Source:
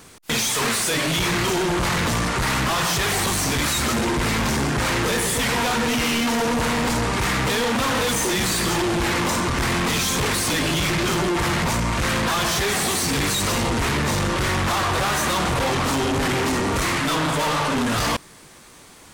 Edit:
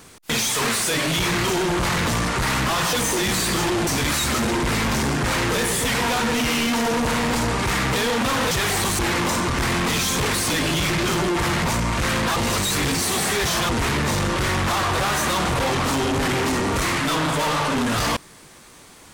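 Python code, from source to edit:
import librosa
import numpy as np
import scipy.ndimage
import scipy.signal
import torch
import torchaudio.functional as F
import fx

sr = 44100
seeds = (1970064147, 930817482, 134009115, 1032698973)

y = fx.edit(x, sr, fx.swap(start_s=2.93, length_s=0.48, other_s=8.05, other_length_s=0.94),
    fx.reverse_span(start_s=12.36, length_s=1.33), tone=tone)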